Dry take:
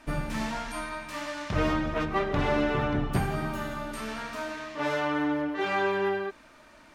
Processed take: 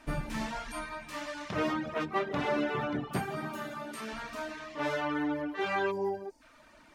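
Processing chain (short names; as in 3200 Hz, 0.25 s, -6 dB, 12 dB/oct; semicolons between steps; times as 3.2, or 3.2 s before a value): 1.49–4.13 HPF 170 Hz 12 dB/oct; 5.91–6.41 spectral gain 1000–4400 Hz -15 dB; reverb removal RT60 0.57 s; gain -2.5 dB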